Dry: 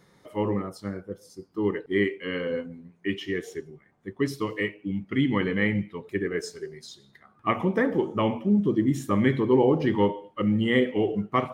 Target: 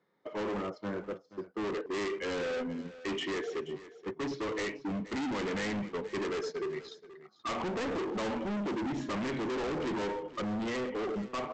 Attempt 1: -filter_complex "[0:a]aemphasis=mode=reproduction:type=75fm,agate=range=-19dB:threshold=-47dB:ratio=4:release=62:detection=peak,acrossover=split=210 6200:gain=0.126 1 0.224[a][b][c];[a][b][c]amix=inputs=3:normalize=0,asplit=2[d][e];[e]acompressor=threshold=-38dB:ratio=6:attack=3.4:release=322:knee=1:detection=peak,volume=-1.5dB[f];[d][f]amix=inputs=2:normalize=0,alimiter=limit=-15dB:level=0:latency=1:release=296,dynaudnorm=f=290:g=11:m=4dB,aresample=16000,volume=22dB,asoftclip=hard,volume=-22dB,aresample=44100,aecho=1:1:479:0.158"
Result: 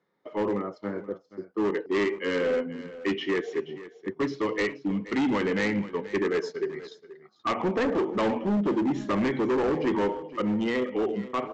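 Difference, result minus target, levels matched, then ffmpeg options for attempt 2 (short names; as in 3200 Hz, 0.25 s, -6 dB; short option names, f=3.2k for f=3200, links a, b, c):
overloaded stage: distortion -6 dB
-filter_complex "[0:a]aemphasis=mode=reproduction:type=75fm,agate=range=-19dB:threshold=-47dB:ratio=4:release=62:detection=peak,acrossover=split=210 6200:gain=0.126 1 0.224[a][b][c];[a][b][c]amix=inputs=3:normalize=0,asplit=2[d][e];[e]acompressor=threshold=-38dB:ratio=6:attack=3.4:release=322:knee=1:detection=peak,volume=-1.5dB[f];[d][f]amix=inputs=2:normalize=0,alimiter=limit=-15dB:level=0:latency=1:release=296,dynaudnorm=f=290:g=11:m=4dB,aresample=16000,volume=32.5dB,asoftclip=hard,volume=-32.5dB,aresample=44100,aecho=1:1:479:0.158"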